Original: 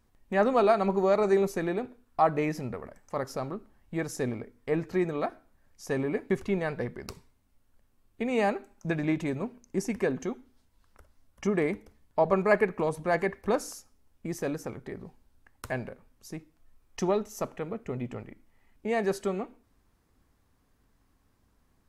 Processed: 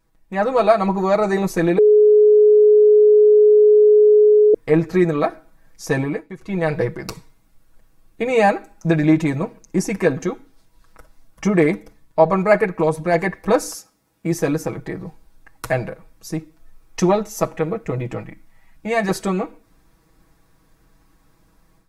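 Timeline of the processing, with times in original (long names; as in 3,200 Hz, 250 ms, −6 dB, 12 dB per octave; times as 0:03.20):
0:01.78–0:04.54: beep over 422 Hz −13.5 dBFS
0:05.95–0:06.75: duck −17.5 dB, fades 0.36 s
0:13.75–0:14.32: high-pass filter 110 Hz
0:18.20–0:19.09: parametric band 400 Hz −9.5 dB
whole clip: notch filter 3,000 Hz, Q 14; comb filter 6.2 ms, depth 86%; automatic gain control gain up to 9.5 dB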